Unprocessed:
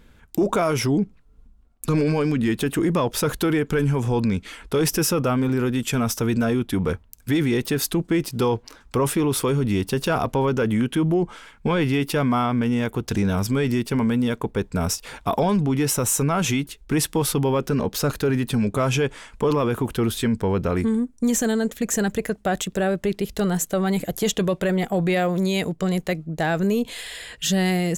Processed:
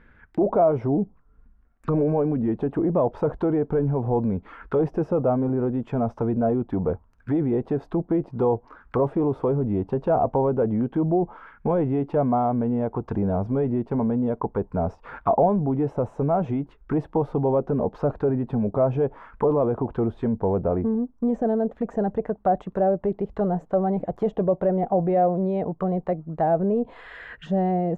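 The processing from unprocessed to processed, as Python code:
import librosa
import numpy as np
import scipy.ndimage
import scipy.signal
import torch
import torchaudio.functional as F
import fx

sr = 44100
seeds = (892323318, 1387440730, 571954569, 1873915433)

y = fx.envelope_lowpass(x, sr, base_hz=700.0, top_hz=1800.0, q=2.9, full_db=-19.0, direction='down')
y = y * 10.0 ** (-3.5 / 20.0)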